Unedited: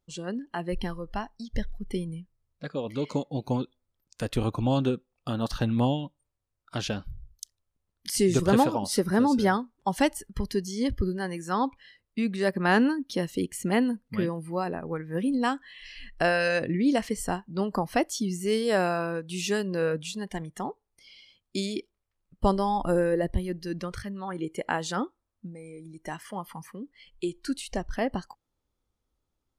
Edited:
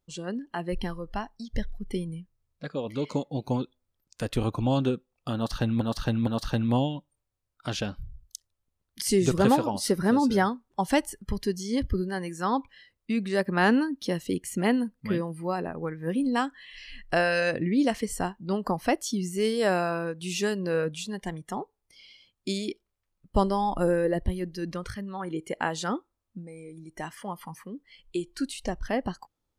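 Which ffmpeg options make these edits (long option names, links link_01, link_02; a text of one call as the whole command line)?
ffmpeg -i in.wav -filter_complex "[0:a]asplit=3[link_01][link_02][link_03];[link_01]atrim=end=5.812[link_04];[link_02]atrim=start=5.348:end=5.812[link_05];[link_03]atrim=start=5.348[link_06];[link_04][link_05]acrossfade=duration=0.004:curve1=hsin:curve2=hsin[link_07];[link_07][link_06]acrossfade=duration=0.004:curve1=hsin:curve2=hsin" out.wav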